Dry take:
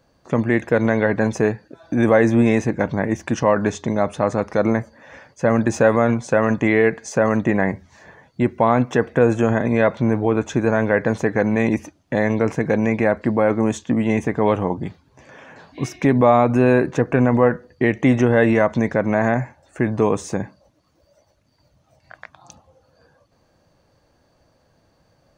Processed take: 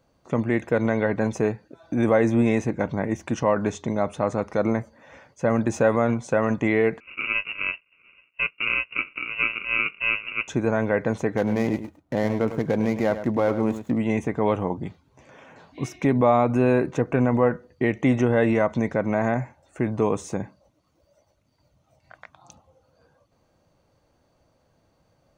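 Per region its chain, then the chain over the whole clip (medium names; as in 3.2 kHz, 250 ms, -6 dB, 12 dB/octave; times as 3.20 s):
7.00–10.48 s: harmonic tremolo 2.9 Hz, depth 100%, crossover 800 Hz + sample-rate reducer 1 kHz + frequency inversion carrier 2.8 kHz
11.37–13.98 s: median filter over 15 samples + delay 104 ms -11.5 dB
whole clip: peaking EQ 4.8 kHz -4 dB 0.33 oct; band-stop 1.7 kHz, Q 9.5; trim -4.5 dB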